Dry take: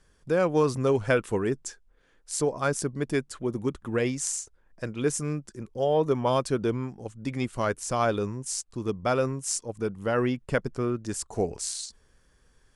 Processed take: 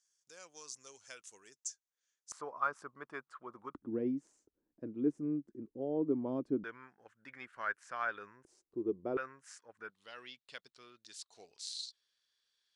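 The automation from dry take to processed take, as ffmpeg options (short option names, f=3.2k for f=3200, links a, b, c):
-af "asetnsamples=n=441:p=0,asendcmd='2.32 bandpass f 1200;3.75 bandpass f 290;6.64 bandpass f 1600;8.45 bandpass f 360;9.17 bandpass f 1600;9.9 bandpass f 3900',bandpass=f=6.4k:t=q:w=4.1:csg=0"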